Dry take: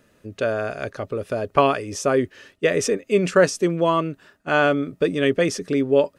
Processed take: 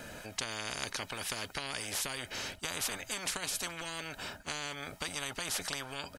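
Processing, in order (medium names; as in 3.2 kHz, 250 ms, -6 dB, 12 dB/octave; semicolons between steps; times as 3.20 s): comb 1.3 ms, depth 59%; compression, threshold -21 dBFS, peak gain reduction 11 dB; spectrum-flattening compressor 10:1; trim -7.5 dB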